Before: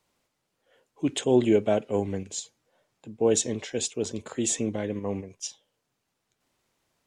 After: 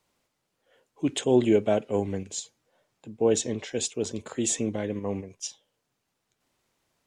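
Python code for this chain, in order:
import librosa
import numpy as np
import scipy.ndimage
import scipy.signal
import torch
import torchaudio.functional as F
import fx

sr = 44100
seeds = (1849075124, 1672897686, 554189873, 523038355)

y = fx.high_shelf(x, sr, hz=8600.0, db=-10.0, at=(3.24, 3.67))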